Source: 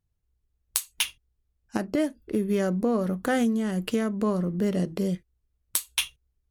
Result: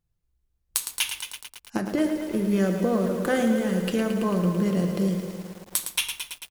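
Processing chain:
single-tap delay 224 ms −15 dB
on a send at −7 dB: convolution reverb RT60 0.75 s, pre-delay 6 ms
on the sum: feedback echo at a low word length 111 ms, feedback 80%, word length 7 bits, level −8 dB

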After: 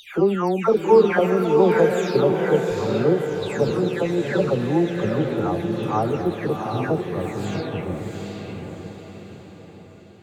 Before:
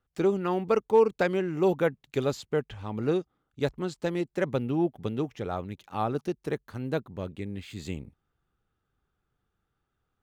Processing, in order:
every frequency bin delayed by itself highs early, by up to 423 ms
feedback delay with all-pass diffusion 746 ms, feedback 47%, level −3.5 dB
level +7 dB

